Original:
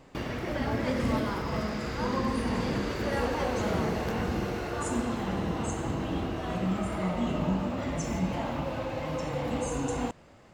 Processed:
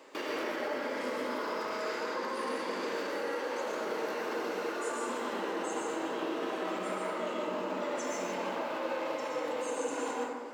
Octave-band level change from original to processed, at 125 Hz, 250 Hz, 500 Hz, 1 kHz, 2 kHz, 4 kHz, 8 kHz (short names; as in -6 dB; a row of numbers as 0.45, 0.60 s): -24.5, -9.0, -1.0, -1.5, -0.5, -2.0, -2.5 dB